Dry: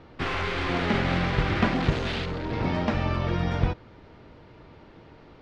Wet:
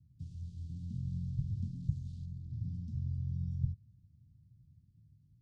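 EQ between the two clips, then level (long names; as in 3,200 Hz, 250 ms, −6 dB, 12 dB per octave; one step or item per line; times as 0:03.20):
band-pass filter 150–3,400 Hz
inverse Chebyshev band-stop filter 530–2,100 Hz, stop band 80 dB
+3.0 dB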